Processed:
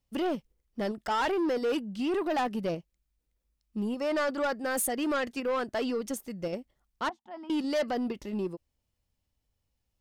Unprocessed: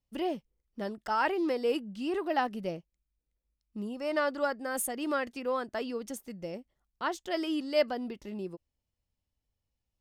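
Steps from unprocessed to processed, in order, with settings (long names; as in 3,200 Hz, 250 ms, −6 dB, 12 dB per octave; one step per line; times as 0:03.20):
in parallel at −1.5 dB: output level in coarse steps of 19 dB
0:07.09–0:07.50: on the sum: pair of resonant band-passes 450 Hz, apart 1.9 octaves
soft clipping −27 dBFS, distortion −11 dB
level +3 dB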